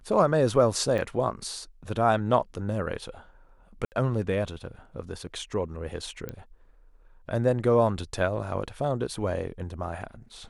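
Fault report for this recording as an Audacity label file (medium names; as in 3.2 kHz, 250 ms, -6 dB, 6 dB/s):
0.980000	0.990000	dropout 5.3 ms
3.850000	3.920000	dropout 69 ms
6.290000	6.290000	pop -21 dBFS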